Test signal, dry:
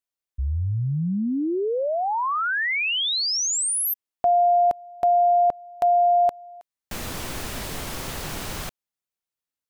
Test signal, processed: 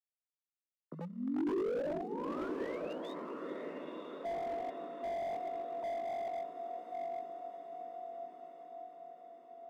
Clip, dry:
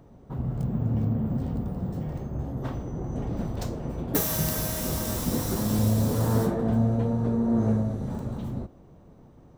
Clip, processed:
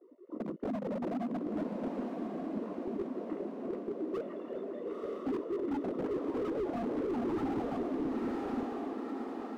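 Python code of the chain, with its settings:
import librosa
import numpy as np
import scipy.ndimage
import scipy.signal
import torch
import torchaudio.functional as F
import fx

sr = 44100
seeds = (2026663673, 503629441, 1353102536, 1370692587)

p1 = fx.sine_speech(x, sr)
p2 = fx.dereverb_blind(p1, sr, rt60_s=0.71)
p3 = fx.chorus_voices(p2, sr, voices=4, hz=0.24, base_ms=16, depth_ms=4.2, mix_pct=35)
p4 = fx.echo_diffused(p3, sr, ms=472, feedback_pct=48, wet_db=-12.0)
p5 = fx.quant_companded(p4, sr, bits=4)
p6 = p4 + F.gain(torch.from_numpy(p5), -8.0).numpy()
p7 = np.convolve(p6, np.full(55, 1.0 / 55))[:len(p6)]
p8 = 10.0 ** (-25.5 / 20.0) * (np.abs((p7 / 10.0 ** (-25.5 / 20.0) + 3.0) % 4.0 - 2.0) - 1.0)
p9 = scipy.signal.sosfilt(scipy.signal.butter(4, 250.0, 'highpass', fs=sr, output='sos'), p8)
p10 = p9 + fx.echo_diffused(p9, sr, ms=978, feedback_pct=61, wet_db=-6.5, dry=0)
y = fx.slew_limit(p10, sr, full_power_hz=11.0)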